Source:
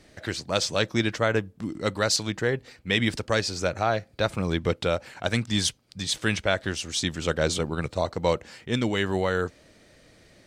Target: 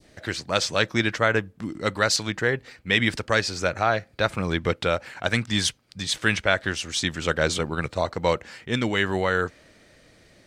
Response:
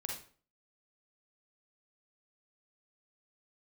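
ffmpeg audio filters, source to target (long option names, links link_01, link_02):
-af "adynamicequalizer=threshold=0.01:dfrequency=1700:dqfactor=0.86:tfrequency=1700:tqfactor=0.86:attack=5:release=100:ratio=0.375:range=3:mode=boostabove:tftype=bell"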